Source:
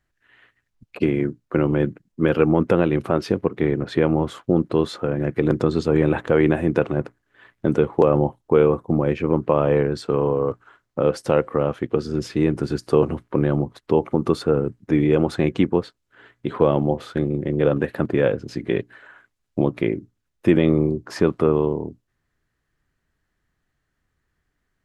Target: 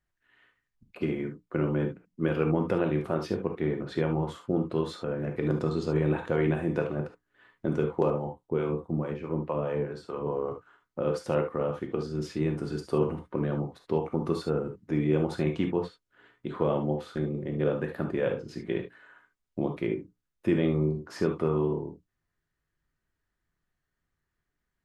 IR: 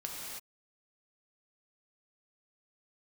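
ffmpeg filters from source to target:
-filter_complex "[0:a]asettb=1/sr,asplit=3[s0][s1][s2];[s0]atrim=end=8.104[s3];[s1]atrim=start=8.1:end=10.27,asetpts=PTS-STARTPTS,afade=t=in:d=0.004:c=qsin,afade=t=out:st=2.166:d=0.004:c=qsin,acrossover=split=530[s4][s5];[s4]aeval=exprs='val(0)*(1-0.7/2+0.7/2*cos(2*PI*4.7*n/s))':c=same[s6];[s5]aeval=exprs='val(0)*(1-0.7/2-0.7/2*cos(2*PI*4.7*n/s))':c=same[s7];[s6][s7]amix=inputs=2:normalize=0[s8];[s2]atrim=start=10.266[s9];[s3][s8]acrossfade=d=0.004:c1=hsin:c2=qsin[s10];[s10][s9]acrossfade=d=0.004:c1=qsin:c2=hsin[s11];[1:a]atrim=start_sample=2205,atrim=end_sample=3528[s12];[s11][s12]afir=irnorm=-1:irlink=0,volume=0.473"

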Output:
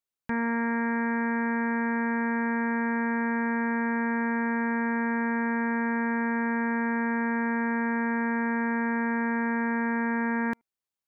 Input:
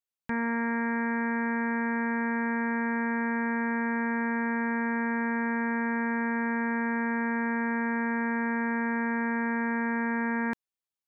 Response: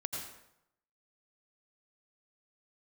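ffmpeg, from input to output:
-filter_complex "[0:a]asplit=2[s0][s1];[1:a]atrim=start_sample=2205,atrim=end_sample=3528,lowpass=2200[s2];[s1][s2]afir=irnorm=-1:irlink=0,volume=0.266[s3];[s0][s3]amix=inputs=2:normalize=0"

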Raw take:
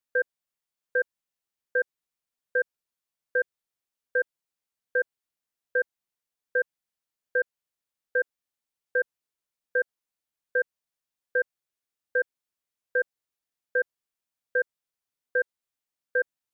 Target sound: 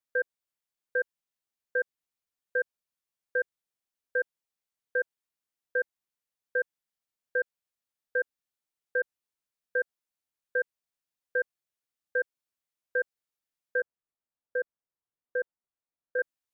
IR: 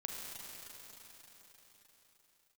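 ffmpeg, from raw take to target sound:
-filter_complex "[0:a]asettb=1/sr,asplit=3[s0][s1][s2];[s0]atrim=end=13.804[s3];[s1]atrim=start=13.8:end=16.19,asetpts=PTS-STARTPTS,afade=t=in:d=0.004:c=qsin,afade=t=out:st=2.386:d=0.004:c=qsin,lowpass=1300[s4];[s2]atrim=start=16.186[s5];[s3][s4]acrossfade=d=0.004:c1=hsin:c2=qsin[s6];[s6][s5]acrossfade=d=0.004:c1=qsin:c2=hsin,volume=0.708"

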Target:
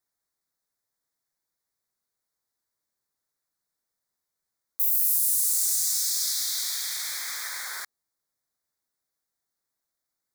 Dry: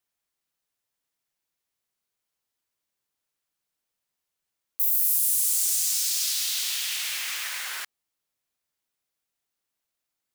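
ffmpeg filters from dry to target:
-af "asuperstop=centerf=2800:order=4:qfactor=1.8,aeval=exprs='0.316*(cos(1*acos(clip(val(0)/0.316,-1,1)))-cos(1*PI/2))+0.00447*(cos(3*acos(clip(val(0)/0.316,-1,1)))-cos(3*PI/2))':c=same"

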